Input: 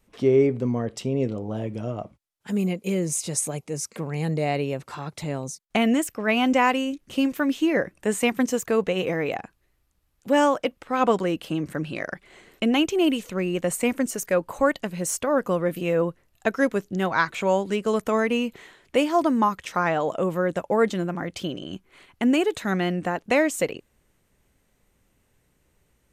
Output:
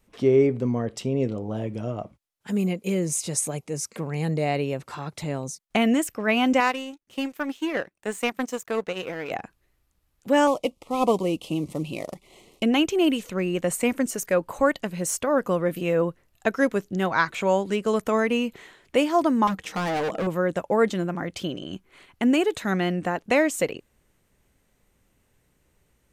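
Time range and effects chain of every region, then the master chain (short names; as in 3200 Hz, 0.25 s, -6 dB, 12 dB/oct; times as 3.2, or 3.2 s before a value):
6.6–9.31 power-law curve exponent 1.4 + low shelf 240 Hz -7.5 dB
10.47–12.63 CVSD 64 kbps + Butterworth band-stop 1600 Hz, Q 1.3
19.47–20.27 small resonant body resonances 200/310/450/770 Hz, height 10 dB, ringing for 70 ms + overloaded stage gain 24 dB
whole clip: dry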